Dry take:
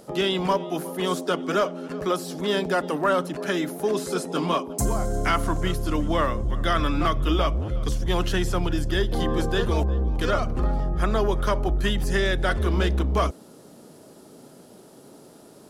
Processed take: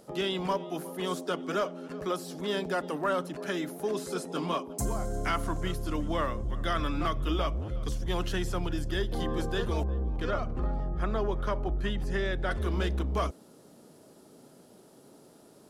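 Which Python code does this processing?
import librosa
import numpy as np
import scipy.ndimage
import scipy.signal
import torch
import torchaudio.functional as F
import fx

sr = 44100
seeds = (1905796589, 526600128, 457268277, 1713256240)

y = fx.lowpass(x, sr, hz=2700.0, slope=6, at=(9.84, 12.51))
y = y * 10.0 ** (-7.0 / 20.0)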